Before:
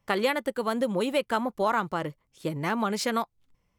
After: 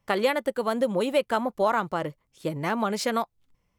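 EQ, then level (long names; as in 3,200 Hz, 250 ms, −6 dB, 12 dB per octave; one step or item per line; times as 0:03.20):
dynamic equaliser 610 Hz, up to +4 dB, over −40 dBFS, Q 1.9
0.0 dB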